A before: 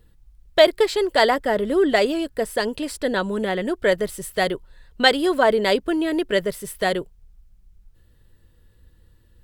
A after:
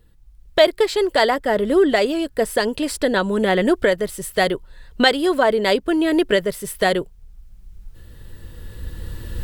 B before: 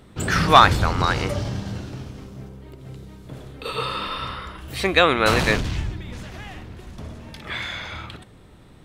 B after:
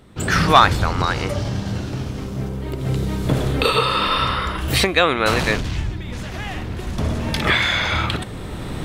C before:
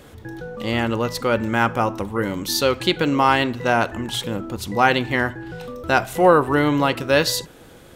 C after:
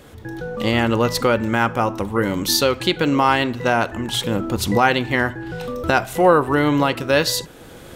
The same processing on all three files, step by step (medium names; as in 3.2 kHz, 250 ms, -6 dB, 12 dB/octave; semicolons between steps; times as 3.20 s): recorder AGC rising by 9.3 dB/s